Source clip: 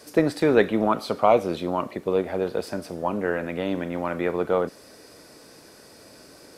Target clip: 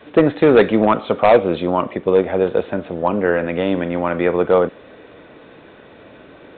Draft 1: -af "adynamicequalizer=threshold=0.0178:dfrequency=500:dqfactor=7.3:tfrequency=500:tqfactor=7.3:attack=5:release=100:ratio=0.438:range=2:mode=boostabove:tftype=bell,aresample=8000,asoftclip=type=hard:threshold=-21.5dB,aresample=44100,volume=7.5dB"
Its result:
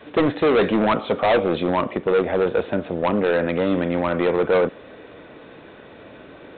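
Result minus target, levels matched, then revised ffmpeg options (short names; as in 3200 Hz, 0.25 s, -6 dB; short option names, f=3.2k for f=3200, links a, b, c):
hard clip: distortion +9 dB
-af "adynamicequalizer=threshold=0.0178:dfrequency=500:dqfactor=7.3:tfrequency=500:tqfactor=7.3:attack=5:release=100:ratio=0.438:range=2:mode=boostabove:tftype=bell,aresample=8000,asoftclip=type=hard:threshold=-12.5dB,aresample=44100,volume=7.5dB"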